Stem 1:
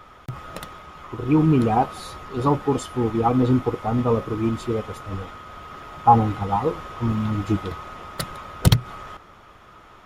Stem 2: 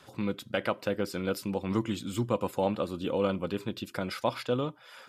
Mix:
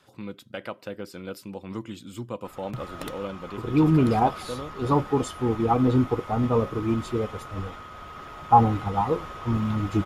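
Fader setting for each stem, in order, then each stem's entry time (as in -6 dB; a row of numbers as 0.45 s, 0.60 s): -2.0 dB, -5.5 dB; 2.45 s, 0.00 s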